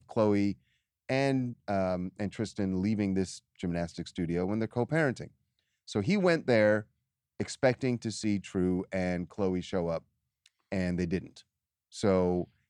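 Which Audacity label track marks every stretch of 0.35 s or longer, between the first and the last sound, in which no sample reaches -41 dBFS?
0.530000	1.090000	silence
5.270000	5.880000	silence
6.820000	7.400000	silence
9.980000	10.460000	silence
11.380000	11.950000	silence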